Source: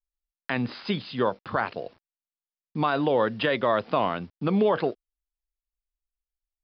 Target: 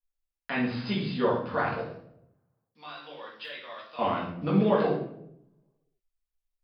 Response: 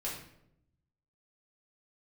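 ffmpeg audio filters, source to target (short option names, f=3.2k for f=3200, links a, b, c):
-filter_complex "[0:a]asettb=1/sr,asplit=3[a][b][c];[a]atrim=end=1.824[d];[b]atrim=start=1.82:end=3.99,asetpts=PTS-STARTPTS,afade=t=in:d=0.004:c=qsin,afade=t=out:st=2.166:d=0.004:c=qsin,aderivative[e];[c]atrim=start=3.986[f];[d][e]acrossfade=d=0.004:c1=hsin:c2=qsin[g];[g][f]acrossfade=d=0.004:c1=qsin:c2=hsin[h];[1:a]atrim=start_sample=2205[i];[h][i]afir=irnorm=-1:irlink=0,volume=-3dB"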